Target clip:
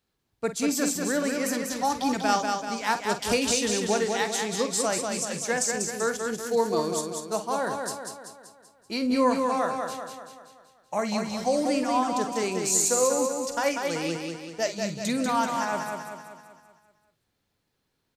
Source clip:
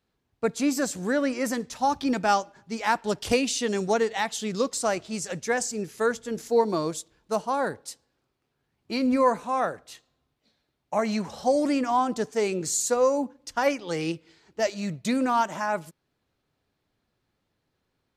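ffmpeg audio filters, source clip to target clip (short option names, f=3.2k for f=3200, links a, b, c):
-filter_complex "[0:a]highshelf=f=4k:g=8,asplit=2[a][b];[b]adelay=48,volume=-11.5dB[c];[a][c]amix=inputs=2:normalize=0,aecho=1:1:192|384|576|768|960|1152|1344:0.596|0.304|0.155|0.079|0.0403|0.0206|0.0105,volume=-3dB"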